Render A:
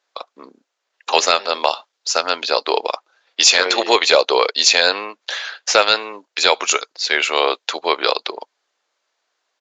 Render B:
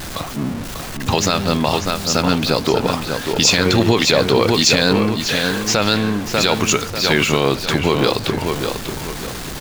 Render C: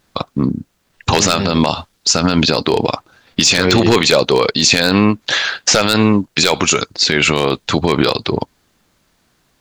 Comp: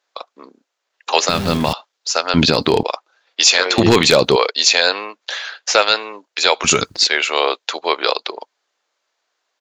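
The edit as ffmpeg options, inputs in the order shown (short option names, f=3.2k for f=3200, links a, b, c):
-filter_complex "[2:a]asplit=3[a][b][c];[0:a]asplit=5[d][e][f][g][h];[d]atrim=end=1.292[i];[1:a]atrim=start=1.288:end=1.732[j];[e]atrim=start=1.728:end=2.342[k];[a]atrim=start=2.338:end=2.832[l];[f]atrim=start=2.828:end=3.782[m];[b]atrim=start=3.778:end=4.362[n];[g]atrim=start=4.358:end=6.642[o];[c]atrim=start=6.638:end=7.072[p];[h]atrim=start=7.068[q];[i][j]acrossfade=d=0.004:c1=hsin:c2=hsin[r];[r][k]acrossfade=d=0.004:c1=hsin:c2=hsin[s];[s][l]acrossfade=d=0.004:c1=hsin:c2=hsin[t];[t][m]acrossfade=d=0.004:c1=hsin:c2=hsin[u];[u][n]acrossfade=d=0.004:c1=hsin:c2=hsin[v];[v][o]acrossfade=d=0.004:c1=hsin:c2=hsin[w];[w][p]acrossfade=d=0.004:c1=hsin:c2=hsin[x];[x][q]acrossfade=d=0.004:c1=hsin:c2=hsin"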